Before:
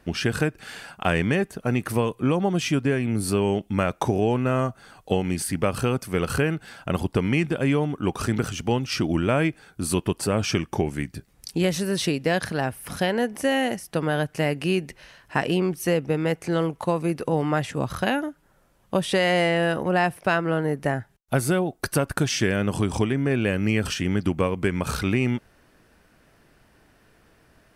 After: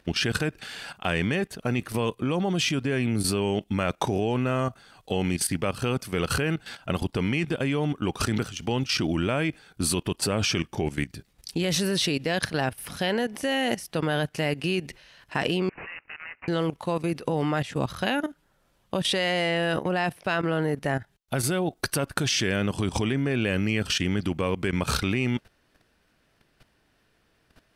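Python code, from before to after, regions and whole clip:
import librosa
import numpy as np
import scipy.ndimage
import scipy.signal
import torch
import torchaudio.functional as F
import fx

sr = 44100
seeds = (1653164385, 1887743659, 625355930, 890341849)

y = fx.chain(x, sr, fx.cvsd(bps=64000),
    fx.highpass(hz=1400.0, slope=24),
    fx.resample_bad(factor=8, down='none', up='filtered'), at=(15.69, 16.48))
y = fx.peak_eq(y, sr, hz=3700.0, db=6.5, octaves=1.3)
y = fx.level_steps(y, sr, step_db=14)
y = y * 10.0 ** (3.0 / 20.0)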